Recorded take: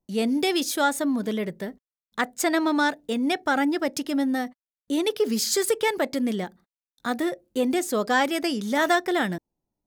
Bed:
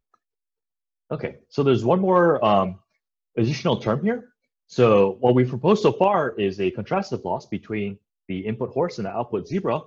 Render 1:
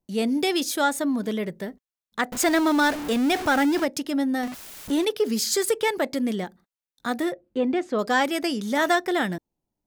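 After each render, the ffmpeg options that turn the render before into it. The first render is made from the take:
-filter_complex "[0:a]asettb=1/sr,asplit=3[s0][s1][s2];[s0]atrim=end=2.324[s3];[s1]atrim=start=2.32:end=3.85,asetpts=PTS-STARTPTS,afade=t=in:d=0.004:c=qsin,afade=t=out:st=1.526:d=0.004:c=qsin,aeval=exprs='val(0)+0.5*0.0501*sgn(val(0))':c=same[s4];[s2]atrim=start=3.846[s5];[s3][s4]acrossfade=d=0.004:c1=hsin:c2=qsin[s6];[s6][s5]acrossfade=d=0.004:c1=qsin:c2=hsin,asettb=1/sr,asplit=3[s7][s8][s9];[s7]atrim=end=4.434[s10];[s8]atrim=start=4.43:end=5.05,asetpts=PTS-STARTPTS,afade=t=in:d=0.004:c=qsin,afade=t=out:st=0.616:d=0.004:c=qsin,aeval=exprs='val(0)+0.5*0.0316*sgn(val(0))':c=same[s11];[s9]atrim=start=5.046[s12];[s10][s11]acrossfade=d=0.004:c1=hsin:c2=qsin[s13];[s13][s12]acrossfade=d=0.004:c1=qsin:c2=hsin,asettb=1/sr,asplit=3[s14][s15][s16];[s14]atrim=end=7.324[s17];[s15]atrim=start=7.32:end=7.99,asetpts=PTS-STARTPTS,afade=t=in:d=0.004:c=qsin,afade=t=out:st=0.666:d=0.004:c=qsin,lowpass=2600[s18];[s16]atrim=start=7.986[s19];[s17][s18]acrossfade=d=0.004:c1=hsin:c2=qsin[s20];[s20][s19]acrossfade=d=0.004:c1=qsin:c2=hsin"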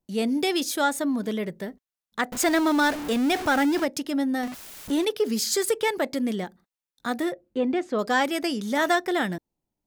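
-af "volume=0.891"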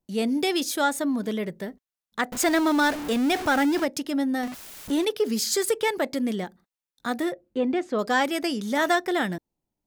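-af anull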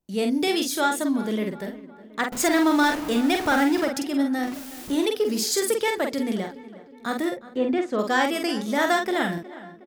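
-filter_complex "[0:a]asplit=2[s0][s1];[s1]adelay=47,volume=0.562[s2];[s0][s2]amix=inputs=2:normalize=0,asplit=2[s3][s4];[s4]adelay=364,lowpass=f=2600:p=1,volume=0.141,asplit=2[s5][s6];[s6]adelay=364,lowpass=f=2600:p=1,volume=0.53,asplit=2[s7][s8];[s8]adelay=364,lowpass=f=2600:p=1,volume=0.53,asplit=2[s9][s10];[s10]adelay=364,lowpass=f=2600:p=1,volume=0.53,asplit=2[s11][s12];[s12]adelay=364,lowpass=f=2600:p=1,volume=0.53[s13];[s3][s5][s7][s9][s11][s13]amix=inputs=6:normalize=0"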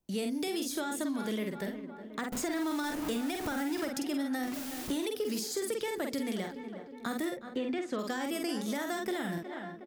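-filter_complex "[0:a]alimiter=limit=0.126:level=0:latency=1:release=130,acrossover=split=390|1400|6800[s0][s1][s2][s3];[s0]acompressor=threshold=0.0178:ratio=4[s4];[s1]acompressor=threshold=0.00891:ratio=4[s5];[s2]acompressor=threshold=0.00708:ratio=4[s6];[s3]acompressor=threshold=0.00794:ratio=4[s7];[s4][s5][s6][s7]amix=inputs=4:normalize=0"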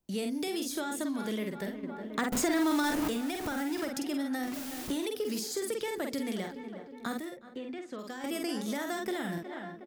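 -filter_complex "[0:a]asettb=1/sr,asplit=3[s0][s1][s2];[s0]atrim=end=1.834[s3];[s1]atrim=start=1.83:end=3.08,asetpts=PTS-STARTPTS,afade=t=in:d=0.004:c=qsin,afade=t=out:st=1.246:d=0.004:c=qsin,acontrast=33[s4];[s2]atrim=start=3.076[s5];[s3][s4]acrossfade=d=0.004:c1=hsin:c2=qsin[s6];[s6][s5]acrossfade=d=0.004:c1=qsin:c2=hsin,asplit=3[s7][s8][s9];[s7]atrim=end=7.192[s10];[s8]atrim=start=7.188:end=8.242,asetpts=PTS-STARTPTS,volume=0.473[s11];[s9]atrim=start=8.238[s12];[s10][s11]acrossfade=d=0.004:c1=hsin:c2=hsin[s13];[s13][s12]acrossfade=d=0.004:c1=hsin:c2=hsin"

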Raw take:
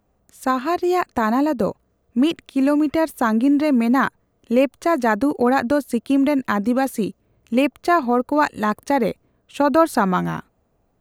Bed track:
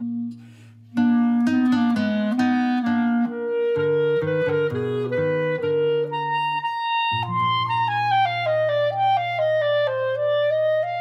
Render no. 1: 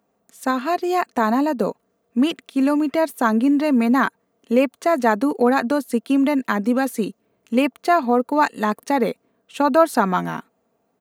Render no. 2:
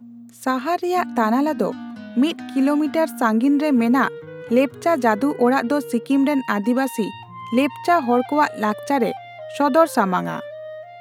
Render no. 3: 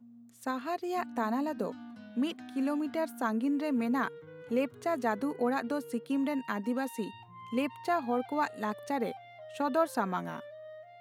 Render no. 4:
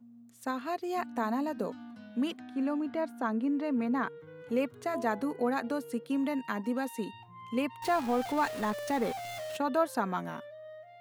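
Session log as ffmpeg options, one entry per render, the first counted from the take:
-af "highpass=210,aecho=1:1:4.4:0.32"
-filter_complex "[1:a]volume=0.2[s0];[0:a][s0]amix=inputs=2:normalize=0"
-af "volume=0.224"
-filter_complex "[0:a]asettb=1/sr,asplit=3[s0][s1][s2];[s0]atrim=end=2.394[s3];[s1]atrim=start=2.39:end=4.2,asetpts=PTS-STARTPTS,afade=t=in:d=0.004:c=qsin,afade=t=out:st=1.806:d=0.004:c=qsin,lowpass=f=2400:p=1[s4];[s2]atrim=start=4.196[s5];[s3][s4]acrossfade=d=0.004:c1=hsin:c2=qsin[s6];[s6][s5]acrossfade=d=0.004:c1=qsin:c2=hsin,asettb=1/sr,asplit=3[s7][s8][s9];[s7]atrim=end=4.834[s10];[s8]atrim=start=4.83:end=6.62,asetpts=PTS-STARTPTS,afade=t=in:d=0.004:c=qsin,afade=t=out:st=1.786:d=0.004:c=qsin,bandreject=f=168.2:t=h:w=4,bandreject=f=336.4:t=h:w=4,bandreject=f=504.6:t=h:w=4,bandreject=f=672.8:t=h:w=4,bandreject=f=841:t=h:w=4,bandreject=f=1009.2:t=h:w=4[s11];[s9]atrim=start=6.616[s12];[s10][s11]acrossfade=d=0.004:c1=hsin:c2=qsin[s13];[s13][s12]acrossfade=d=0.004:c1=qsin:c2=hsin,asettb=1/sr,asplit=3[s14][s15][s16];[s14]atrim=end=7.824[s17];[s15]atrim=start=7.82:end=9.57,asetpts=PTS-STARTPTS,afade=t=in:d=0.004:c=qsin,afade=t=out:st=1.746:d=0.004:c=qsin,aeval=exprs='val(0)+0.5*0.0158*sgn(val(0))':c=same[s18];[s16]atrim=start=9.566[s19];[s17][s18]acrossfade=d=0.004:c1=hsin:c2=qsin[s20];[s20][s19]acrossfade=d=0.004:c1=qsin:c2=hsin"

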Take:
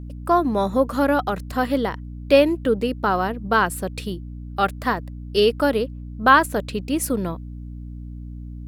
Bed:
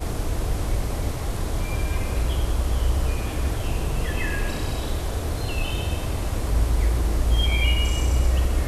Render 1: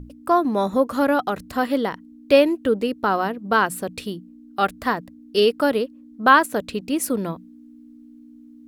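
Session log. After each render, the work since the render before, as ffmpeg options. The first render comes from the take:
-af "bandreject=f=60:t=h:w=6,bandreject=f=120:t=h:w=6,bandreject=f=180:t=h:w=6"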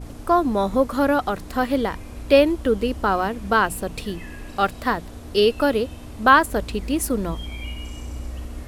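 -filter_complex "[1:a]volume=0.251[s0];[0:a][s0]amix=inputs=2:normalize=0"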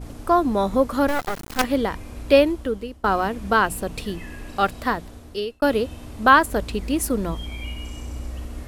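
-filter_complex "[0:a]asettb=1/sr,asplit=3[s0][s1][s2];[s0]atrim=end=1.084[s3];[s1]atrim=start=1.08:end=1.64,asetpts=PTS-STARTPTS,afade=t=in:d=0.004:c=qsin,afade=t=out:st=0.556:d=0.004:c=qsin,acrusher=bits=3:dc=4:mix=0:aa=0.000001[s4];[s2]atrim=start=1.636[s5];[s3][s4]acrossfade=d=0.004:c1=hsin:c2=qsin[s6];[s6][s5]acrossfade=d=0.004:c1=qsin:c2=hsin,asplit=3[s7][s8][s9];[s7]atrim=end=3.04,asetpts=PTS-STARTPTS,afade=t=out:st=2.35:d=0.69:silence=0.0944061[s10];[s8]atrim=start=3.04:end=5.62,asetpts=PTS-STARTPTS,afade=t=in:d=0.004:c=hsin:silence=0.0944061,afade=t=out:st=1.58:d=1:c=qsin[s11];[s9]atrim=start=5.62,asetpts=PTS-STARTPTS,afade=t=in:d=0.004:c=hsin[s12];[s10][s11][s12]concat=n=3:v=0:a=1"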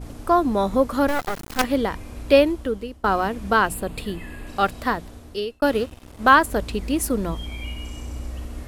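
-filter_complex "[0:a]asettb=1/sr,asplit=3[s0][s1][s2];[s0]atrim=end=3.744[s3];[s1]atrim=start=3.74:end=4.47,asetpts=PTS-STARTPTS,afade=t=in:d=0.004:c=qsin,afade=t=out:st=0.726:d=0.004:c=qsin,equalizer=f=5800:t=o:w=0.26:g=-14[s4];[s2]atrim=start=4.466[s5];[s3][s4]acrossfade=d=0.004:c1=hsin:c2=qsin[s6];[s6][s5]acrossfade=d=0.004:c1=qsin:c2=hsin,asettb=1/sr,asplit=3[s7][s8][s9];[s7]atrim=end=5.664[s10];[s8]atrim=start=5.66:end=6.35,asetpts=PTS-STARTPTS,afade=t=in:d=0.004:c=qsin,afade=t=out:st=0.686:d=0.004:c=qsin,aeval=exprs='sgn(val(0))*max(abs(val(0))-0.0112,0)':c=same[s11];[s9]atrim=start=6.346[s12];[s10][s11]acrossfade=d=0.004:c1=hsin:c2=qsin[s13];[s13][s12]acrossfade=d=0.004:c1=qsin:c2=hsin"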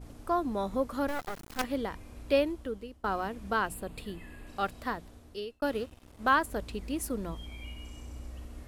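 -af "volume=0.282"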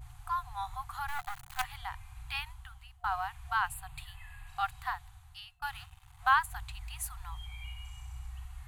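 -af "afftfilt=real='re*(1-between(b*sr/4096,140,720))':imag='im*(1-between(b*sr/4096,140,720))':win_size=4096:overlap=0.75,equalizer=f=5300:t=o:w=0.29:g=-9.5"

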